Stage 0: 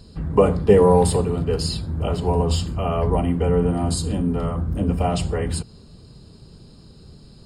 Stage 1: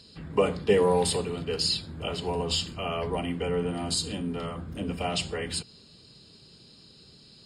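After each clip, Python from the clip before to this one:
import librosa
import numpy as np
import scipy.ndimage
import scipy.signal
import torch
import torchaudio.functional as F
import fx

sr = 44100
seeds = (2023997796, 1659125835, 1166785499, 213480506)

y = fx.weighting(x, sr, curve='D')
y = F.gain(torch.from_numpy(y), -7.5).numpy()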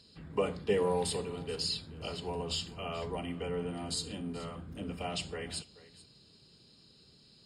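y = x + 10.0 ** (-18.5 / 20.0) * np.pad(x, (int(432 * sr / 1000.0), 0))[:len(x)]
y = F.gain(torch.from_numpy(y), -7.5).numpy()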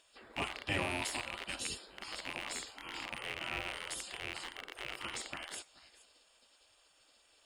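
y = fx.rattle_buzz(x, sr, strikes_db=-41.0, level_db=-28.0)
y = fx.spec_gate(y, sr, threshold_db=-15, keep='weak')
y = F.gain(torch.from_numpy(y), 3.5).numpy()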